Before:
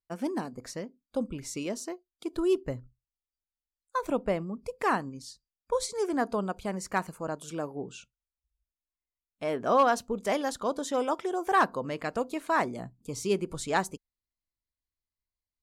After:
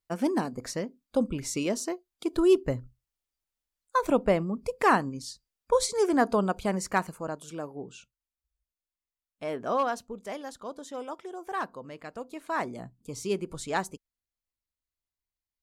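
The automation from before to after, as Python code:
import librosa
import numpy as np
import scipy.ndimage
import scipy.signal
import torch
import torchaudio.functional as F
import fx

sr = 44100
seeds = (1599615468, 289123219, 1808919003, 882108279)

y = fx.gain(x, sr, db=fx.line((6.74, 5.0), (7.5, -2.5), (9.58, -2.5), (10.3, -9.0), (12.17, -9.0), (12.72, -2.0)))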